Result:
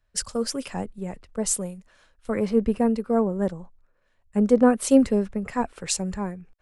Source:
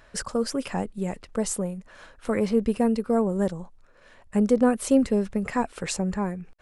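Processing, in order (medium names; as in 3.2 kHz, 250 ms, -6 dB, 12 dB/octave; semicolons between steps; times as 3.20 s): three bands expanded up and down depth 70%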